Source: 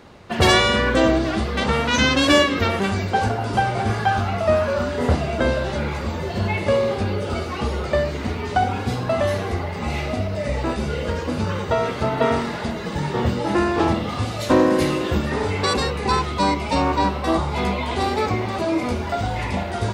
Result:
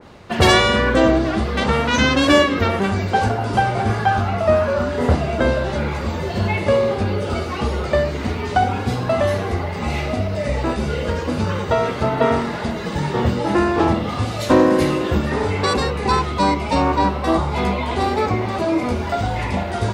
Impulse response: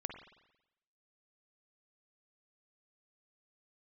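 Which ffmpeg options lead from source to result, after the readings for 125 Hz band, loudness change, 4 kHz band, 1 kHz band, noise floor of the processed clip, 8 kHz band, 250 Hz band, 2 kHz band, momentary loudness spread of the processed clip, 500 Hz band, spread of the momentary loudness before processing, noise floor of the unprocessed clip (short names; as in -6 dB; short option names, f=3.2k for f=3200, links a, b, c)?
+2.5 dB, +2.0 dB, 0.0 dB, +2.5 dB, -26 dBFS, 0.0 dB, +2.5 dB, +1.5 dB, 8 LU, +2.5 dB, 9 LU, -28 dBFS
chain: -af "adynamicequalizer=threshold=0.0251:dfrequency=2100:dqfactor=0.7:tfrequency=2100:tqfactor=0.7:attack=5:release=100:ratio=0.375:range=2.5:mode=cutabove:tftype=highshelf,volume=2.5dB"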